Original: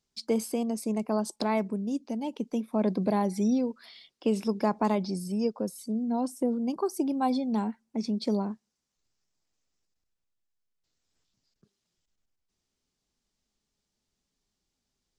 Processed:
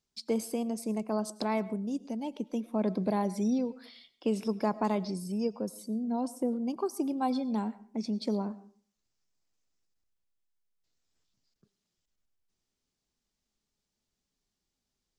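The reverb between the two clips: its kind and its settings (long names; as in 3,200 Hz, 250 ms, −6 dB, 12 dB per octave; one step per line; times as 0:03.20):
comb and all-pass reverb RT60 0.46 s, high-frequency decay 0.55×, pre-delay 65 ms, DRR 18 dB
level −3 dB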